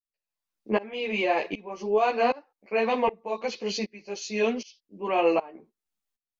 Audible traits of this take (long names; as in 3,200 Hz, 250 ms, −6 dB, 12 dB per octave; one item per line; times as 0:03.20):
tremolo saw up 1.3 Hz, depth 95%
a shimmering, thickened sound